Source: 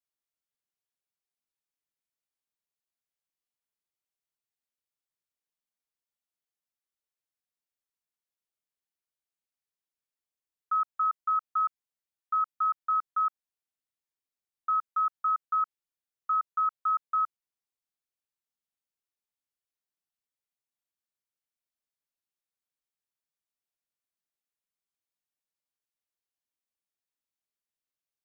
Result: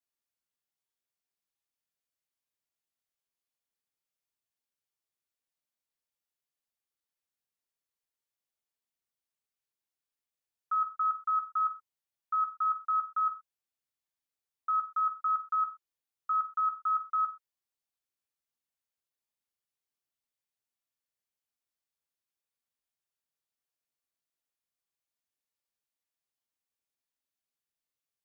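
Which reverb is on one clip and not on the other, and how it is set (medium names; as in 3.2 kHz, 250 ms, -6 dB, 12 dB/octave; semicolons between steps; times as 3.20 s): gated-style reverb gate 140 ms falling, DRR 4 dB; trim -2 dB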